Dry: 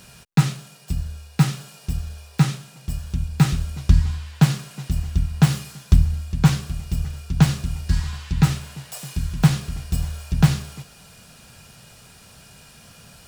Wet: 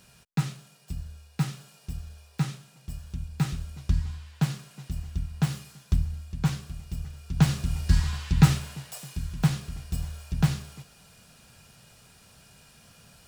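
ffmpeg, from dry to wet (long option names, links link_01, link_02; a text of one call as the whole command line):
ffmpeg -i in.wav -af "volume=-0.5dB,afade=type=in:start_time=7.18:duration=0.66:silence=0.334965,afade=type=out:start_time=8.56:duration=0.51:silence=0.446684" out.wav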